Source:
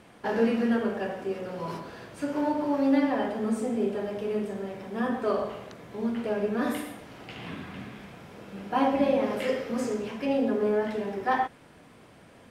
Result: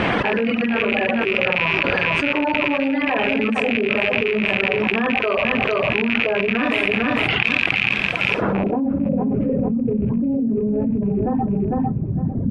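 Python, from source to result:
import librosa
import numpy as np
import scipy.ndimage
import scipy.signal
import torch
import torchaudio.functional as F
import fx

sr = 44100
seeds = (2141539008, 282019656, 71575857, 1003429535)

y = fx.rattle_buzz(x, sr, strikes_db=-40.0, level_db=-20.0)
y = fx.notch(y, sr, hz=5200.0, q=5.7, at=(0.84, 1.25))
y = fx.pre_emphasis(y, sr, coefficient=0.8, at=(7.42, 8.41), fade=0.02)
y = fx.dereverb_blind(y, sr, rt60_s=2.0)
y = fx.filter_sweep_lowpass(y, sr, from_hz=2600.0, to_hz=190.0, start_s=8.3, end_s=8.92, q=1.6)
y = fx.echo_feedback(y, sr, ms=452, feedback_pct=15, wet_db=-13)
y = fx.env_flatten(y, sr, amount_pct=100)
y = y * librosa.db_to_amplitude(-1.0)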